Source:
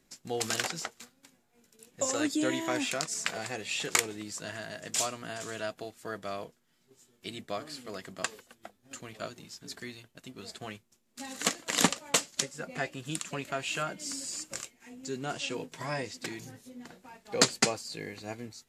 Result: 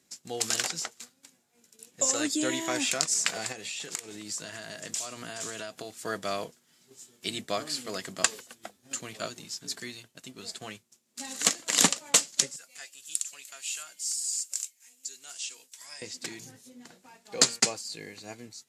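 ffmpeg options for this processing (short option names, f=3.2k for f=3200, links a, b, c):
-filter_complex "[0:a]asettb=1/sr,asplit=3[a][b][c];[a]atrim=end=3.524[d];[b]atrim=start=3.52:end=5.93,asetpts=PTS-STARTPTS,afade=t=in:d=0.004:c=qsin,afade=t=out:st=2.406:d=0.004:c=qsin,acompressor=threshold=-38dB:ratio=16:attack=3.2:release=140:knee=1:detection=peak[e];[c]atrim=start=5.926[f];[d][e]acrossfade=d=0.004:c1=hsin:c2=qsin[g];[g][f]acrossfade=d=0.004:c1=qsin:c2=hsin,asettb=1/sr,asplit=3[h][i][j];[h]atrim=end=12.564[k];[i]atrim=start=12.56:end=16.02,asetpts=PTS-STARTPTS,afade=t=in:d=0.004:c=qsin,afade=t=out:st=3.456:d=0.004:c=qsin,aderivative[l];[j]atrim=start=16.016[m];[k][l]acrossfade=d=0.004:c1=hsin:c2=qsin[n];[n][m]acrossfade=d=0.004:c1=qsin:c2=hsin,asettb=1/sr,asplit=3[o][p][q];[o]atrim=end=17.104[r];[p]atrim=start=17.1:end=17.6,asetpts=PTS-STARTPTS,afade=t=in:d=0.004:c=qsin,afade=t=out:st=0.496:d=0.004:c=qsin,bandreject=f=116.9:t=h:w=4,bandreject=f=233.8:t=h:w=4,bandreject=f=350.7:t=h:w=4,bandreject=f=467.6:t=h:w=4,bandreject=f=584.5:t=h:w=4,bandreject=f=701.4:t=h:w=4,bandreject=f=818.3:t=h:w=4,bandreject=f=935.2:t=h:w=4,bandreject=f=1.0521k:t=h:w=4,bandreject=f=1.169k:t=h:w=4,bandreject=f=1.2859k:t=h:w=4,bandreject=f=1.4028k:t=h:w=4,bandreject=f=1.5197k:t=h:w=4,bandreject=f=1.6366k:t=h:w=4,bandreject=f=1.7535k:t=h:w=4,bandreject=f=1.8704k:t=h:w=4,bandreject=f=1.9873k:t=h:w=4,bandreject=f=2.1042k:t=h:w=4,bandreject=f=2.2211k:t=h:w=4,bandreject=f=2.338k:t=h:w=4,bandreject=f=2.4549k:t=h:w=4,bandreject=f=2.5718k:t=h:w=4,bandreject=f=2.6887k:t=h:w=4,bandreject=f=2.8056k:t=h:w=4[s];[q]atrim=start=17.596[t];[r][s]acrossfade=d=0.004:c1=hsin:c2=qsin[u];[u][t]acrossfade=d=0.004:c1=qsin:c2=hsin,highpass=100,equalizer=f=7.3k:t=o:w=2.1:g=8.5,dynaudnorm=f=210:g=21:m=11.5dB,volume=-2.5dB"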